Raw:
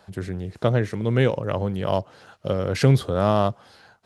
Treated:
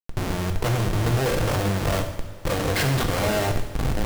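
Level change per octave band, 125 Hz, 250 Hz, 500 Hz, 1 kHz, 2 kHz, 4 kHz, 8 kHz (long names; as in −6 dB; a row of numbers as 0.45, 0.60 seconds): −1.0, −2.0, −3.0, 0.0, +5.0, +5.5, +11.0 decibels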